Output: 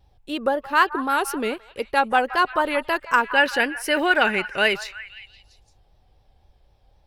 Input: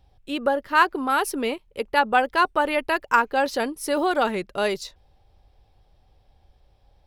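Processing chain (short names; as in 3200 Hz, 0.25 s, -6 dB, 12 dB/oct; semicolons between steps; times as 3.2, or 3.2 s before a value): vibrato 3.9 Hz 72 cents; spectral gain 3.28–5.16, 1400–3100 Hz +11 dB; delay with a stepping band-pass 0.172 s, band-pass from 1100 Hz, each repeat 0.7 oct, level -12 dB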